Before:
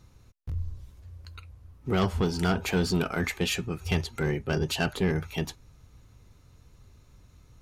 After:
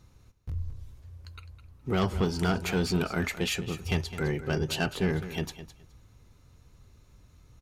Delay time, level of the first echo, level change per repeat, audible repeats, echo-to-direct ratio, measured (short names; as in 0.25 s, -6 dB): 0.209 s, -13.0 dB, -15.5 dB, 2, -13.0 dB